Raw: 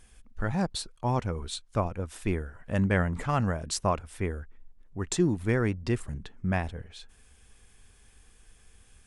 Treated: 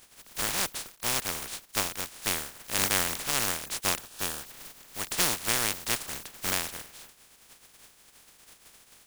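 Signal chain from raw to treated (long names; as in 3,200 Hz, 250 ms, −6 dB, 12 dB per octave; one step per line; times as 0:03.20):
compressing power law on the bin magnitudes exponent 0.12
0:04.01–0:04.41: notch filter 2,100 Hz, Q 5.6
level −1.5 dB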